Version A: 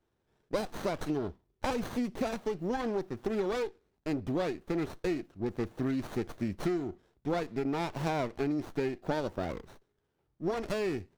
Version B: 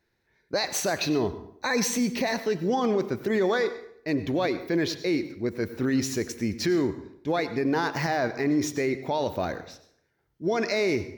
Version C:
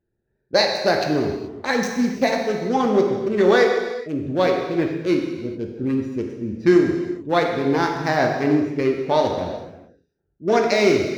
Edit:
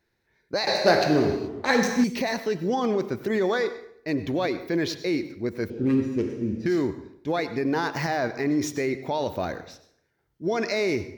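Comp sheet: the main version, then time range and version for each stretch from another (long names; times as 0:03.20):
B
0:00.67–0:02.04: punch in from C
0:05.70–0:06.66: punch in from C
not used: A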